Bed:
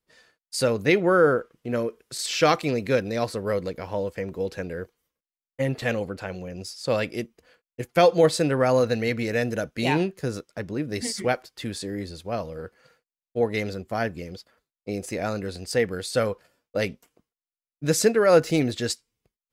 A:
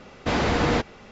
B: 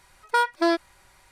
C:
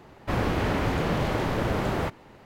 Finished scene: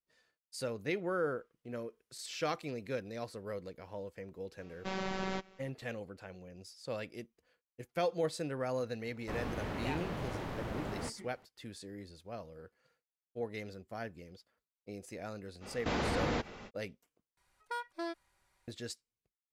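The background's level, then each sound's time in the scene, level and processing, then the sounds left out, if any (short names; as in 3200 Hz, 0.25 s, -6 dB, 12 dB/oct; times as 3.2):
bed -15.5 dB
4.59 add A -12 dB + robotiser 190 Hz
9 add C -13.5 dB
15.6 add A -2.5 dB, fades 0.05 s + compressor 2.5:1, threshold -31 dBFS
17.37 replace with B -18 dB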